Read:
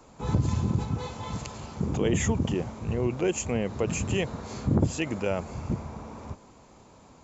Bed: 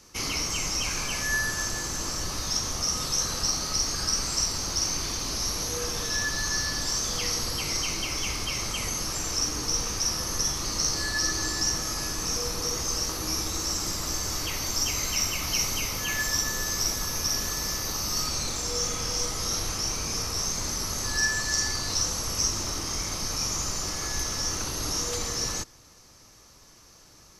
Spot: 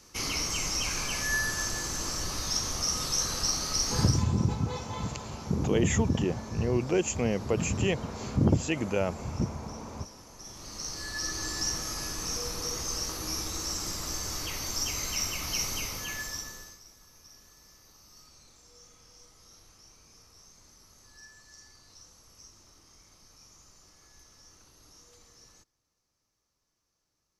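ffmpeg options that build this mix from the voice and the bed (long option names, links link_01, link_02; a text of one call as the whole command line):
ffmpeg -i stem1.wav -i stem2.wav -filter_complex "[0:a]adelay=3700,volume=0dB[link_01];[1:a]volume=17dB,afade=type=out:start_time=3.98:duration=0.27:silence=0.0841395,afade=type=in:start_time=10.36:duration=1.24:silence=0.112202,afade=type=out:start_time=15.79:duration=1.01:silence=0.0749894[link_02];[link_01][link_02]amix=inputs=2:normalize=0" out.wav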